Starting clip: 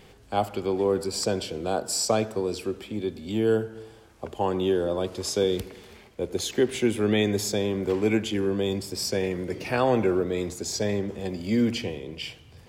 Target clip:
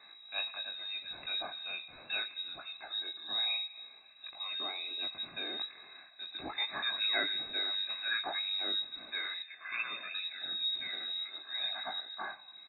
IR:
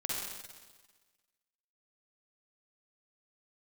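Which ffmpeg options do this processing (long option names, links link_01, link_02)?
-filter_complex "[0:a]aecho=1:1:2.2:0.6,flanger=delay=15.5:depth=6.1:speed=1.1,asettb=1/sr,asplit=3[link_01][link_02][link_03];[link_01]atrim=end=9.424[link_04];[link_02]atrim=start=9.42:end=12,asetpts=PTS-STARTPTS,afade=type=in:duration=0.004:curve=qsin,afade=type=out:start_time=2.576:duration=0.004:curve=qsin,acrossover=split=240|2400[link_05][link_06][link_07];[link_07]adelay=110[link_08];[link_05]adelay=720[link_09];[link_09][link_06][link_08]amix=inputs=3:normalize=0,atrim=end_sample=113778[link_10];[link_03]atrim=start=11.996[link_11];[link_04][link_10]acrossfade=duration=0.004:curve1=hsin:curve2=qsin[link_12];[link_12][link_11]acrossfade=duration=0.004:curve1=qsin:curve2=hsin,afftfilt=real='re*(1-between(b*sr/4096,270,1200))':imag='im*(1-between(b*sr/4096,270,1200))':win_size=4096:overlap=0.75,lowpass=frequency=3300:width_type=q:width=0.5098,lowpass=frequency=3300:width_type=q:width=0.6013,lowpass=frequency=3300:width_type=q:width=0.9,lowpass=frequency=3300:width_type=q:width=2.563,afreqshift=-3900"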